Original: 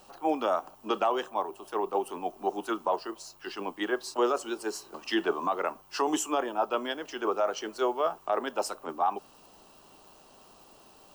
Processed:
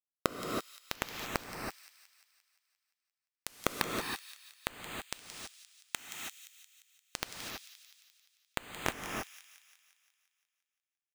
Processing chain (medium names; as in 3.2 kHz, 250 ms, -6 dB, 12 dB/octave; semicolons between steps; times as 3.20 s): dynamic bell 3.8 kHz, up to +4 dB, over -48 dBFS, Q 0.92; harmonic-percussive split harmonic -14 dB; treble shelf 6.8 kHz -10.5 dB; peak limiter -23.5 dBFS, peak gain reduction 6.5 dB; compression 5:1, threshold -50 dBFS, peak gain reduction 18.5 dB; crackle 22 per s -65 dBFS; vibrato 0.86 Hz 9.8 cents; pitch shift -11 st; companded quantiser 2-bit; on a send: feedback echo behind a high-pass 174 ms, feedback 59%, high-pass 2.9 kHz, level -10 dB; on the sum: gated-style reverb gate 350 ms rising, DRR 1 dB; trim +13.5 dB